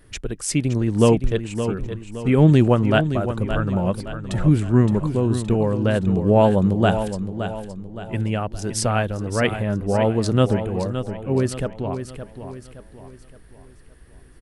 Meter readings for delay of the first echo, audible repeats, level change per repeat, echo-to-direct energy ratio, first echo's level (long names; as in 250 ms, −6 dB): 568 ms, 4, −7.5 dB, −8.5 dB, −9.5 dB